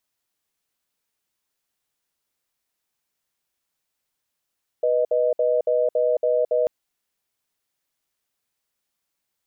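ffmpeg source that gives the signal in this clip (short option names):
-f lavfi -i "aevalsrc='0.1*(sin(2*PI*491*t)+sin(2*PI*620*t))*clip(min(mod(t,0.28),0.22-mod(t,0.28))/0.005,0,1)':d=1.84:s=44100"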